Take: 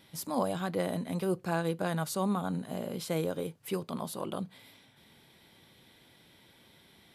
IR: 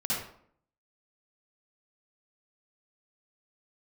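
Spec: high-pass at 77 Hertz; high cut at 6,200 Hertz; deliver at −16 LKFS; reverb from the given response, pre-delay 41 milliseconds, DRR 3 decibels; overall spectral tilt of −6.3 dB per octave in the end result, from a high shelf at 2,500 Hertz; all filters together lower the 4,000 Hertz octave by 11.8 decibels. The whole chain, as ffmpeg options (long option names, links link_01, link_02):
-filter_complex "[0:a]highpass=77,lowpass=6200,highshelf=frequency=2500:gain=-6.5,equalizer=frequency=4000:width_type=o:gain=-9,asplit=2[link_01][link_02];[1:a]atrim=start_sample=2205,adelay=41[link_03];[link_02][link_03]afir=irnorm=-1:irlink=0,volume=-10dB[link_04];[link_01][link_04]amix=inputs=2:normalize=0,volume=15.5dB"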